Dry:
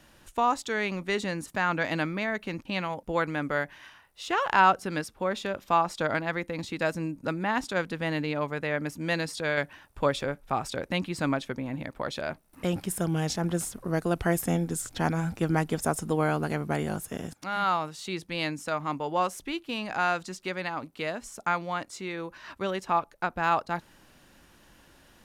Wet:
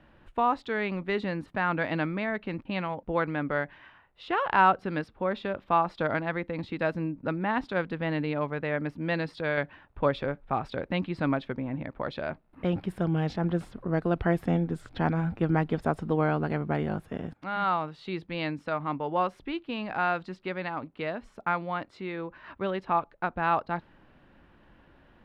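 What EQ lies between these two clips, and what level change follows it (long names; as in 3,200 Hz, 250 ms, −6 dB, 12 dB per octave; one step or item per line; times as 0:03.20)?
dynamic equaliser 4,500 Hz, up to +7 dB, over −51 dBFS, Q 1.3
high-frequency loss of the air 490 metres
+1.5 dB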